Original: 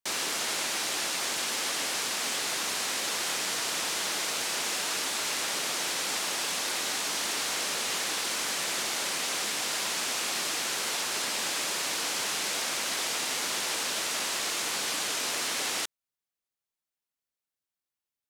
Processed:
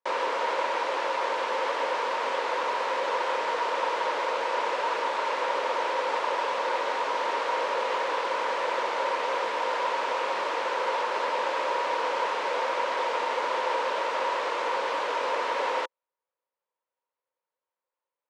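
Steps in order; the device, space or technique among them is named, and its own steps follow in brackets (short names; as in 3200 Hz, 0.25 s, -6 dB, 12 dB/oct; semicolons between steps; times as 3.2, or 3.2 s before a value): tin-can telephone (BPF 410–2100 Hz; small resonant body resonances 520/940 Hz, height 16 dB, ringing for 30 ms); gain +2.5 dB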